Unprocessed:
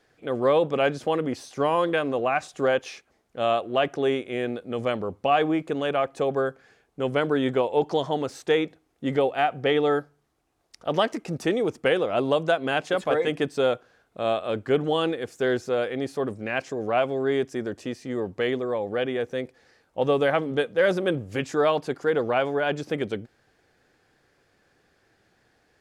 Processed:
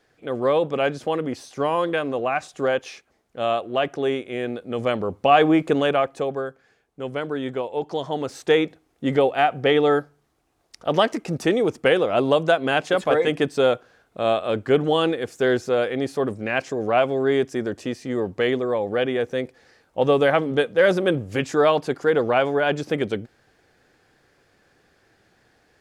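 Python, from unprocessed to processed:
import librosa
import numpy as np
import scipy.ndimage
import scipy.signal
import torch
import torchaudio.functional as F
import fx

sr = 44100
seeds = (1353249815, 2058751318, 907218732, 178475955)

y = fx.gain(x, sr, db=fx.line((4.4, 0.5), (5.73, 8.0), (6.47, -4.0), (7.84, -4.0), (8.49, 4.0)))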